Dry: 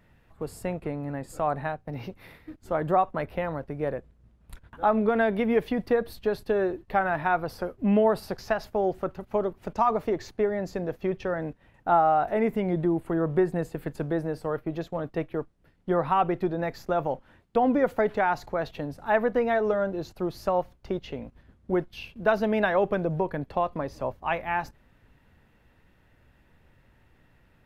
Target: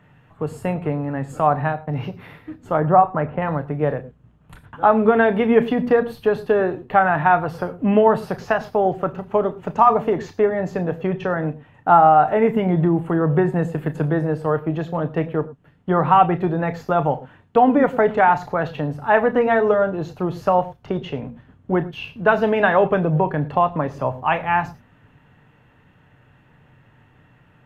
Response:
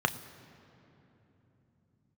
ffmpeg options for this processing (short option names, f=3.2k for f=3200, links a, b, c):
-filter_complex "[0:a]asettb=1/sr,asplit=3[a][b][c];[a]atrim=end=2.774[d];[b]atrim=start=2.77:end=3.42,asetpts=PTS-STARTPTS,afade=t=in:d=0.004:c=qsin,afade=t=out:st=0.646:d=0.004:c=qsin,lowpass=1.7k[e];[c]atrim=start=3.416[f];[d][e]acrossfade=d=0.004:c1=hsin:c2=qsin[g];[g][f]acrossfade=d=0.004:c1=qsin:c2=hsin[h];[1:a]atrim=start_sample=2205,afade=t=out:st=0.17:d=0.01,atrim=end_sample=7938[i];[h][i]afir=irnorm=-1:irlink=0,volume=-2dB"